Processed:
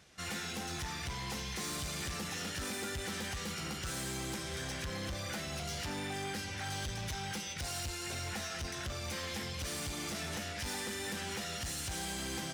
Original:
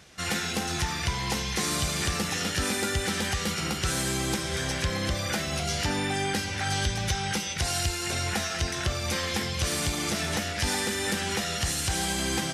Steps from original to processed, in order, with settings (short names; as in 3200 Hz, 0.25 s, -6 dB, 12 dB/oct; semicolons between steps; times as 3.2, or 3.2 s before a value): hard clip -27 dBFS, distortion -11 dB; gain -8.5 dB